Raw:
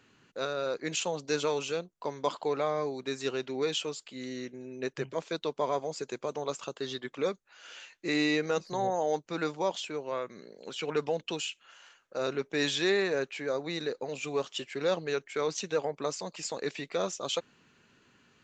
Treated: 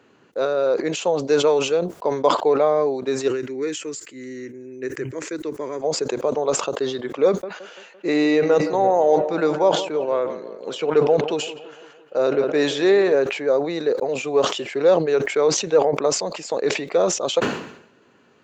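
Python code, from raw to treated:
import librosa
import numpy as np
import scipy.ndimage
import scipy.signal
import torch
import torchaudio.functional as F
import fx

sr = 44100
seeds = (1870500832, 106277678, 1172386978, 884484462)

y = fx.curve_eq(x, sr, hz=(120.0, 180.0, 310.0, 720.0, 1900.0, 3500.0, 7200.0), db=(0, -12, 0, -20, 2, -12, 4), at=(3.28, 5.82))
y = fx.echo_wet_lowpass(y, sr, ms=170, feedback_pct=56, hz=2700.0, wet_db=-15.0, at=(7.26, 13.15))
y = scipy.signal.sosfilt(scipy.signal.butter(2, 51.0, 'highpass', fs=sr, output='sos'), y)
y = fx.peak_eq(y, sr, hz=530.0, db=13.5, octaves=2.5)
y = fx.sustainer(y, sr, db_per_s=80.0)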